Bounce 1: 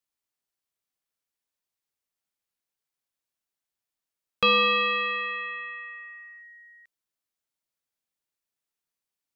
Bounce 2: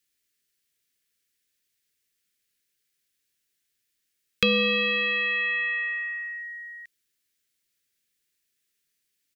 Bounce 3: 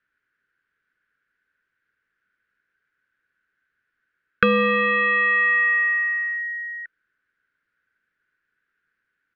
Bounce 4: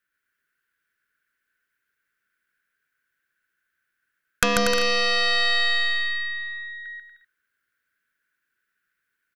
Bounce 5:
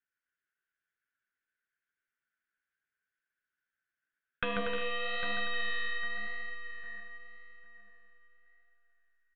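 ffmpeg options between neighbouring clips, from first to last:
-filter_complex "[0:a]firequalizer=gain_entry='entry(460,0);entry(750,-19);entry(1700,4)':delay=0.05:min_phase=1,acrossover=split=490[a][b];[b]acompressor=threshold=-30dB:ratio=6[c];[a][c]amix=inputs=2:normalize=0,volume=7.5dB"
-af "lowpass=f=1.5k:t=q:w=11,volume=4.5dB"
-af "aeval=exprs='0.891*(cos(1*acos(clip(val(0)/0.891,-1,1)))-cos(1*PI/2))+0.178*(cos(6*acos(clip(val(0)/0.891,-1,1)))-cos(6*PI/2))':c=same,aecho=1:1:140|238|306.6|354.6|388.2:0.631|0.398|0.251|0.158|0.1,crystalizer=i=3.5:c=0,volume=-7dB"
-filter_complex "[0:a]aresample=8000,aresample=44100,asplit=2[a][b];[b]adelay=803,lowpass=f=2.4k:p=1,volume=-9dB,asplit=2[c][d];[d]adelay=803,lowpass=f=2.4k:p=1,volume=0.33,asplit=2[e][f];[f]adelay=803,lowpass=f=2.4k:p=1,volume=0.33,asplit=2[g][h];[h]adelay=803,lowpass=f=2.4k:p=1,volume=0.33[i];[a][c][e][g][i]amix=inputs=5:normalize=0,flanger=delay=7.6:depth=9.3:regen=50:speed=0.91:shape=sinusoidal,volume=-8.5dB"

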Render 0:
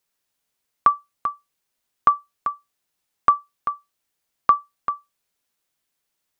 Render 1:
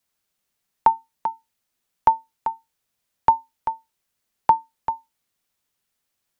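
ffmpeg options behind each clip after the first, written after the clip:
-af "afreqshift=-260"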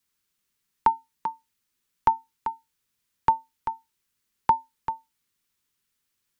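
-af "equalizer=f=670:w=2.8:g=-14.5"

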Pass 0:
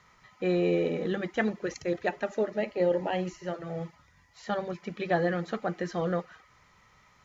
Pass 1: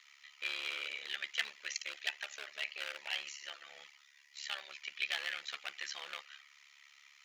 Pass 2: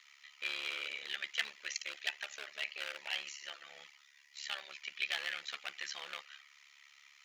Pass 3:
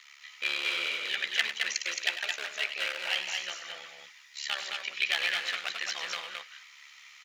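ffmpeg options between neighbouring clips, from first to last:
-af "tremolo=f=71:d=0.889,volume=27.5dB,asoftclip=hard,volume=-27.5dB,highpass=f=2.7k:t=q:w=1.9,volume=6dB"
-af "lowshelf=f=140:g=11"
-af "aecho=1:1:99.13|218.7:0.282|0.631,volume=7.5dB"

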